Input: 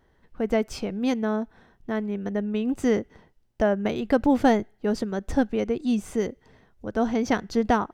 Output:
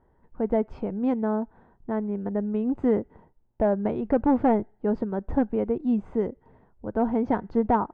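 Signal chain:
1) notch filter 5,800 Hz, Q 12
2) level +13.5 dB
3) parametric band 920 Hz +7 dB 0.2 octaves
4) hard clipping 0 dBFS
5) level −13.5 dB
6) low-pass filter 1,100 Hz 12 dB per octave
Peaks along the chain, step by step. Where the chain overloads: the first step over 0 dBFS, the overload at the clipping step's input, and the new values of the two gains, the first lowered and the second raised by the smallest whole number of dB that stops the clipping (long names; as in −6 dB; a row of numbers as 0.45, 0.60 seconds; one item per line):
−6.5, +7.0, +7.5, 0.0, −13.5, −13.0 dBFS
step 2, 7.5 dB
step 2 +5.5 dB, step 5 −5.5 dB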